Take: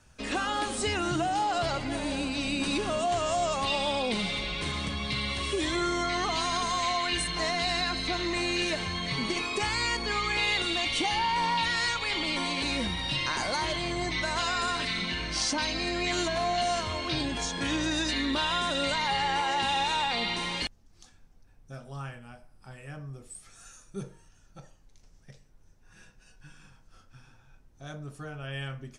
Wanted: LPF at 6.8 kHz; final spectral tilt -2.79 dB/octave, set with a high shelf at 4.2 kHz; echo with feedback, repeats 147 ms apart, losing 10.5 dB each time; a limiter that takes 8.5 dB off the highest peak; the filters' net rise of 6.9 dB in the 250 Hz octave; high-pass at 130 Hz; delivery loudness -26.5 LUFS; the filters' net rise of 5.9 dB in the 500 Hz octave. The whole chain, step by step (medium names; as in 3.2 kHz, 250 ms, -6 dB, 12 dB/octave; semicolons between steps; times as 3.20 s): high-pass 130 Hz; low-pass 6.8 kHz; peaking EQ 250 Hz +7 dB; peaking EQ 500 Hz +6.5 dB; treble shelf 4.2 kHz -6 dB; peak limiter -21.5 dBFS; feedback delay 147 ms, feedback 30%, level -10.5 dB; trim +3 dB